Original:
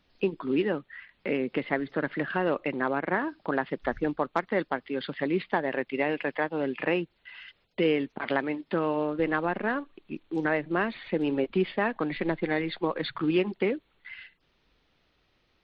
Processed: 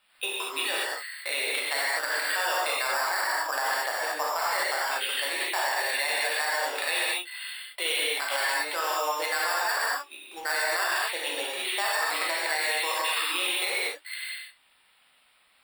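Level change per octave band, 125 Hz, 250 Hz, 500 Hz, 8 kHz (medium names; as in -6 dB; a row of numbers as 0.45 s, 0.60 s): under -35 dB, -20.5 dB, -6.0 dB, no reading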